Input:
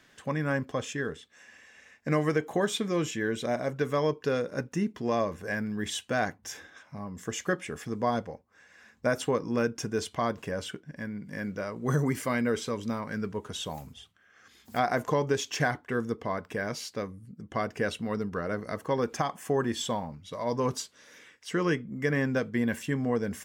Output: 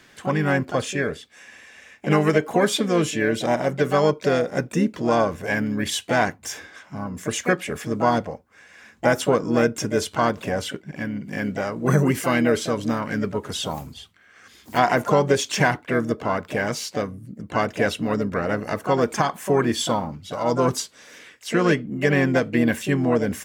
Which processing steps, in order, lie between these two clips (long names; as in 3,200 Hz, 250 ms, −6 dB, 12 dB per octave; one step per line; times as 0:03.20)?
pitch-shifted copies added +5 semitones −8 dB
level +7.5 dB